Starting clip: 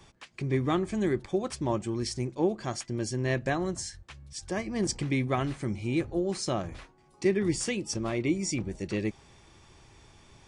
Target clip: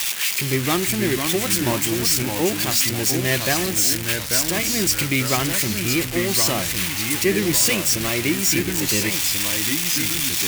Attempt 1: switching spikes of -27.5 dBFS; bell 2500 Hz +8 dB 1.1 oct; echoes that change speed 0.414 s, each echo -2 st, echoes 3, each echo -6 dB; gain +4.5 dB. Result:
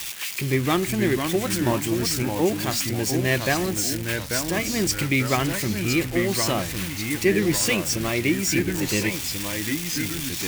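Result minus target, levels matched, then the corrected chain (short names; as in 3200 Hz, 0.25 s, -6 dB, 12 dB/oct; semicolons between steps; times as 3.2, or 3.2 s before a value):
switching spikes: distortion -9 dB
switching spikes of -18.5 dBFS; bell 2500 Hz +8 dB 1.1 oct; echoes that change speed 0.414 s, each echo -2 st, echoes 3, each echo -6 dB; gain +4.5 dB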